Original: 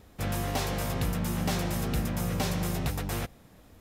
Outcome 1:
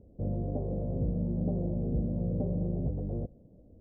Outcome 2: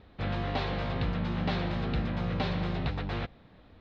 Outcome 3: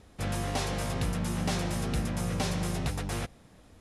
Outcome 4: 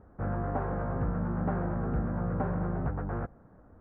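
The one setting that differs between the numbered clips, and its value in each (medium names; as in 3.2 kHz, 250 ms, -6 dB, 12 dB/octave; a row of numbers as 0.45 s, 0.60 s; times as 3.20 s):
Chebyshev low-pass, frequency: 580 Hz, 4.1 kHz, 11 kHz, 1.5 kHz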